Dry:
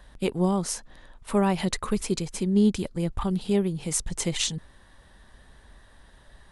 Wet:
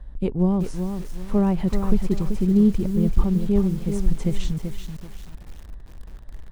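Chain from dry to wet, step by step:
spectral tilt −4 dB per octave
feedback echo at a low word length 384 ms, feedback 35%, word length 6 bits, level −7 dB
level −5 dB

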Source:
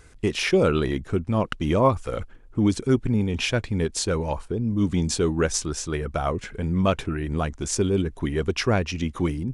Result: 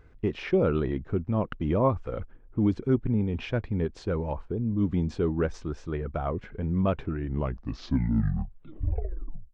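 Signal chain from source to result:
turntable brake at the end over 2.41 s
head-to-tape spacing loss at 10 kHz 38 dB
level −2.5 dB

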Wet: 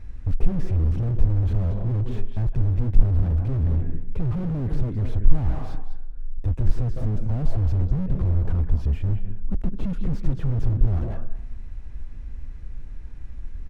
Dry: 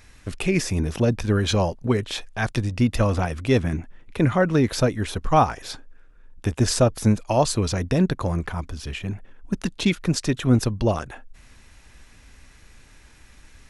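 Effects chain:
on a send at −17.5 dB: low-shelf EQ 170 Hz −6 dB + convolution reverb, pre-delay 155 ms
on the sum: brickwall limiter −14 dBFS, peak gain reduction 8 dB
slap from a distant wall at 36 metres, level −17 dB
0:04.79–0:05.30: downward compressor 6 to 1, threshold −24 dBFS, peak gain reduction 6 dB
spectral tilt −4.5 dB per octave
slew-rate limiting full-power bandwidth 18 Hz
level −4.5 dB

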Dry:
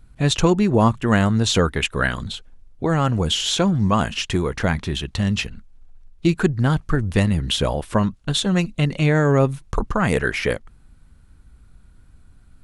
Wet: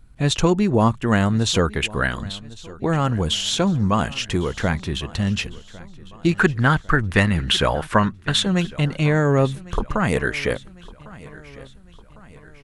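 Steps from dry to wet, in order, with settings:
0:06.31–0:08.45: parametric band 1,600 Hz +11 dB 1.7 octaves
repeating echo 1,103 ms, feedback 50%, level −20.5 dB
level −1 dB

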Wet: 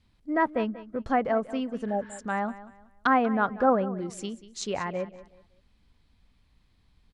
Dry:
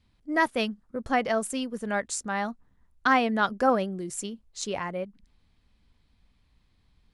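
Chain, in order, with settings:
healed spectral selection 0:01.91–0:02.16, 870–6,900 Hz before
treble cut that deepens with the level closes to 1,400 Hz, closed at −24.5 dBFS
on a send: repeating echo 188 ms, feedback 30%, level −16.5 dB
on the sum: level +1 dB

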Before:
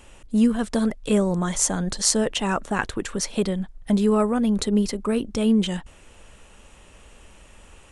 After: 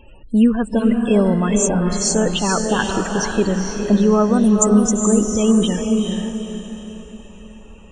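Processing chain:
0:04.34–0:05.33: high shelf with overshoot 5,200 Hz +9 dB, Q 3
spectral peaks only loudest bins 32
feedback delay with all-pass diffusion 455 ms, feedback 42%, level −3.5 dB
level +5 dB

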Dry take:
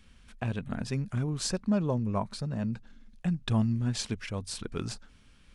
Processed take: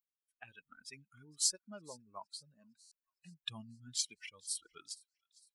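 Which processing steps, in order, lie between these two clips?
spectral dynamics exaggerated over time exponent 2
first difference
delay with a high-pass on its return 458 ms, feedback 53%, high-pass 1,800 Hz, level −23.5 dB
noise reduction from a noise print of the clip's start 13 dB
0:03.44–0:04.78: parametric band 150 Hz +10 dB 0.89 octaves
buffer that repeats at 0:02.81, samples 512, times 8
level +6 dB

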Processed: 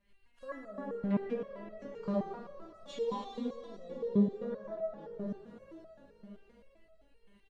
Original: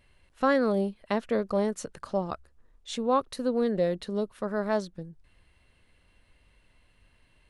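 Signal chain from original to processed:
one scale factor per block 5 bits
double-tracking delay 19 ms −5.5 dB
echo with shifted repeats 481 ms, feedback 46%, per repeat −52 Hz, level −19 dB
brickwall limiter −20.5 dBFS, peak gain reduction 11.5 dB
rotating-speaker cabinet horn 7 Hz, later 1.1 Hz, at 0:00.61
treble cut that deepens with the level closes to 900 Hz, closed at −28.5 dBFS
high-shelf EQ 7,800 Hz −11.5 dB
dense smooth reverb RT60 4.4 s, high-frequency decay 0.9×, DRR −1 dB
step-sequenced resonator 7.7 Hz 200–650 Hz
level +7 dB

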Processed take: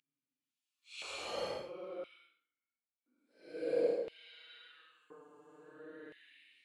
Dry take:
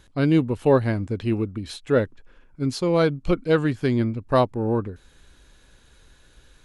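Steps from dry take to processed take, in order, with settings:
gate with flip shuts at −19 dBFS, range −30 dB
extreme stretch with random phases 12×, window 0.05 s, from 0:03.16
auto-filter high-pass square 0.49 Hz 520–2,800 Hz
level +2 dB

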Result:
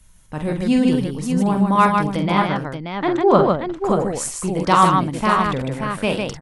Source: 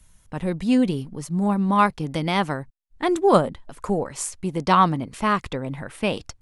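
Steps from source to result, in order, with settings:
0:02.16–0:03.85: high-frequency loss of the air 180 metres
multi-tap delay 46/152/581 ms −6.5/−4/−7 dB
level +2 dB

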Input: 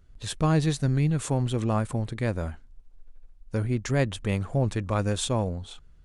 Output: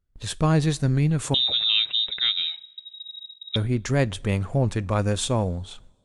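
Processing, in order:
noise gate with hold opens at −41 dBFS
0:01.34–0:03.56: voice inversion scrambler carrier 3,800 Hz
coupled-rooms reverb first 0.31 s, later 2 s, from −18 dB, DRR 20 dB
level +2.5 dB

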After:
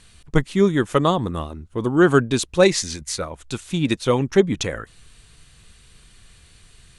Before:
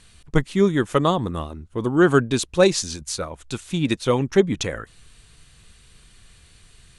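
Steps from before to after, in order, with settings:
0:02.65–0:03.20: parametric band 2,000 Hz +11 dB 0.28 octaves
level +1 dB

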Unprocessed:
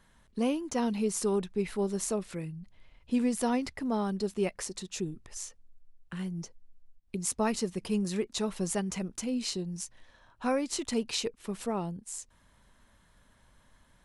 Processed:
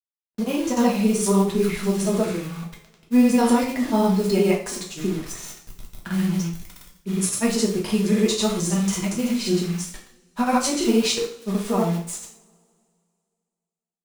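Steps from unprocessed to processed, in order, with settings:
automatic gain control gain up to 4.5 dB
noise that follows the level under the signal 31 dB
bit reduction 7 bits
granular cloud, pitch spread up and down by 0 semitones
coupled-rooms reverb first 0.46 s, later 2.3 s, from −27 dB, DRR −2 dB
level +3 dB

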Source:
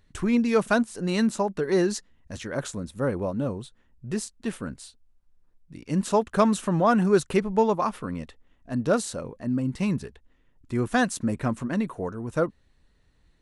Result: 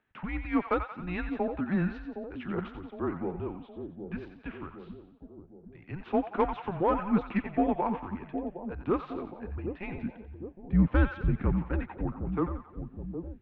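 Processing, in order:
0:09.97–0:11.55: low shelf with overshoot 500 Hz +13.5 dB, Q 1.5
single-sideband voice off tune −180 Hz 320–3,000 Hz
echo with a time of its own for lows and highs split 690 Hz, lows 763 ms, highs 89 ms, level −8.5 dB
in parallel at −3 dB: soft clipping −15 dBFS, distortion −14 dB
on the sum: level −8.5 dB

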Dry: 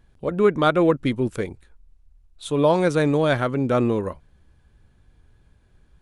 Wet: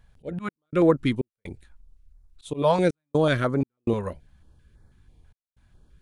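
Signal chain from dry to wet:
volume swells 141 ms
gate pattern "xx.xx.xxxx" 62 BPM −60 dB
notch on a step sequencer 6.1 Hz 320–2,800 Hz

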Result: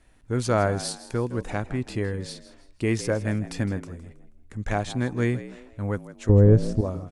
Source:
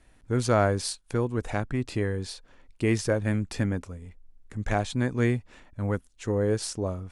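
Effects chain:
0:06.29–0:06.81: spectral tilt −4.5 dB per octave
echo with shifted repeats 161 ms, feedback 35%, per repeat +66 Hz, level −15.5 dB

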